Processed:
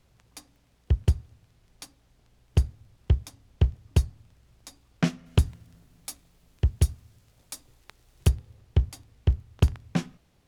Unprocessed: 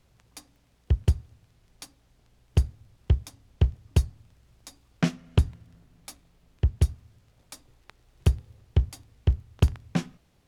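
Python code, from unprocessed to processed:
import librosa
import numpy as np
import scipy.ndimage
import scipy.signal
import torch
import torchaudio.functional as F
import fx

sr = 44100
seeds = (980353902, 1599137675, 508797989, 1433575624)

y = fx.high_shelf(x, sr, hz=5000.0, db=8.5, at=(5.26, 8.29))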